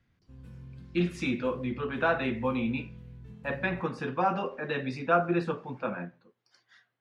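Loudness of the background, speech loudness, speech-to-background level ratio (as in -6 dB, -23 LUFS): -48.5 LUFS, -30.5 LUFS, 18.0 dB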